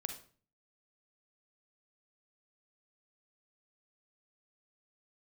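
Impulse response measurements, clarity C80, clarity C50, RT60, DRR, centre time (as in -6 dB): 13.0 dB, 7.0 dB, 0.40 s, 5.5 dB, 16 ms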